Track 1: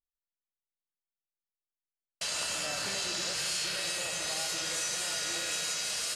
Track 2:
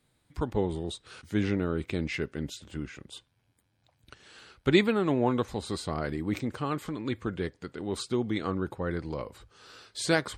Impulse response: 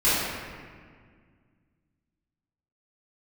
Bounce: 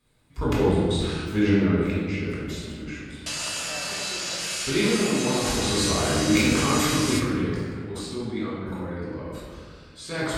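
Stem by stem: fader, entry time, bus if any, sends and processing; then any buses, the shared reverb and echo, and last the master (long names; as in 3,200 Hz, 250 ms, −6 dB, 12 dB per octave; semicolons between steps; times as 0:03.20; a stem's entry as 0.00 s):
+1.5 dB, 1.05 s, send −19.5 dB, no processing
0:01.63 −5 dB → 0:01.94 −13 dB → 0:05.41 −13 dB → 0:05.73 −4 dB → 0:07.04 −4 dB → 0:07.61 −14 dB, 0.00 s, send −6 dB, level that may fall only so fast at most 37 dB per second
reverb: on, RT60 1.9 s, pre-delay 3 ms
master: no processing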